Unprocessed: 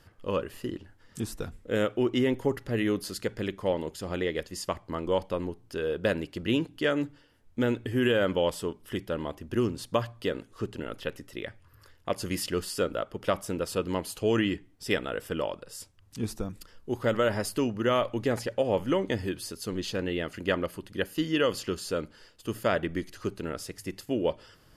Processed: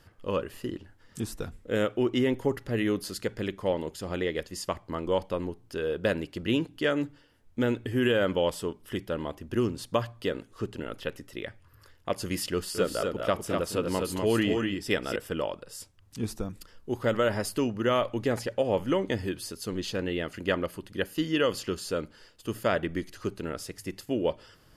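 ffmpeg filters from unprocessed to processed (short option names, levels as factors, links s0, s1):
-filter_complex "[0:a]asettb=1/sr,asplit=3[s0][s1][s2];[s0]atrim=end=12.534[s3];[s1]atrim=start=12.53:end=15.16,asetpts=PTS-STARTPTS,afade=t=in:d=0.004:c=qsin,afade=t=out:st=2.626:d=0.004:c=qsin,aecho=1:1:215|247:0.251|0.631,atrim=end_sample=115983[s4];[s2]atrim=start=15.156[s5];[s3][s4]acrossfade=d=0.004:c1=hsin:c2=qsin[s6];[s6][s5]acrossfade=d=0.004:c1=qsin:c2=hsin"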